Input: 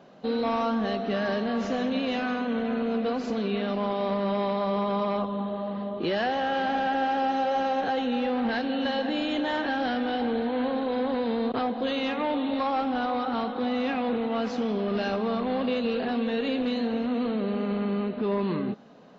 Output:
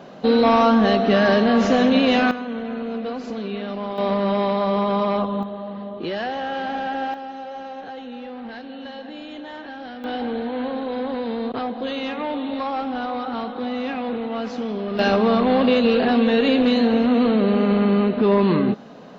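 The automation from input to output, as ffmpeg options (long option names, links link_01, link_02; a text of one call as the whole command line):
ffmpeg -i in.wav -af "asetnsamples=nb_out_samples=441:pad=0,asendcmd='2.31 volume volume -0.5dB;3.98 volume volume 6dB;5.43 volume volume 0dB;7.14 volume volume -8dB;10.04 volume volume 1dB;14.99 volume volume 10dB',volume=11dB" out.wav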